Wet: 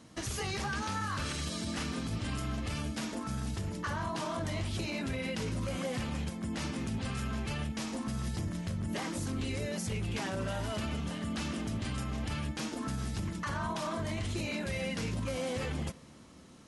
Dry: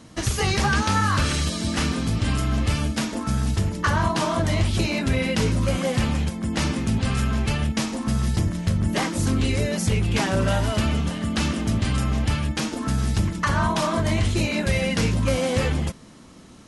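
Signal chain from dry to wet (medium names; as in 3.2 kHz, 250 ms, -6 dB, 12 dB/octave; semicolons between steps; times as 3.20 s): bass shelf 65 Hz -8 dB; peak limiter -19 dBFS, peak gain reduction 7 dB; on a send: reverberation RT60 2.6 s, pre-delay 74 ms, DRR 22 dB; on the sum: trim -8 dB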